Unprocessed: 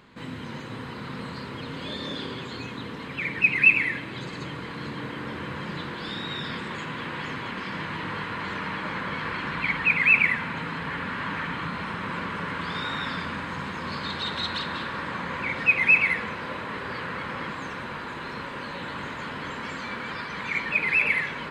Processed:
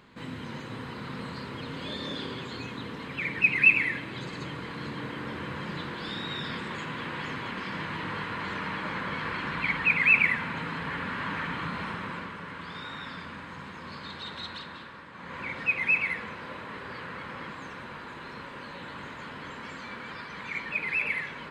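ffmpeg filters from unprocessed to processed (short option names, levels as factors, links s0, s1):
-af "volume=2.37,afade=t=out:st=11.85:d=0.52:silence=0.446684,afade=t=out:st=14.45:d=0.67:silence=0.446684,afade=t=in:st=15.12:d=0.28:silence=0.334965"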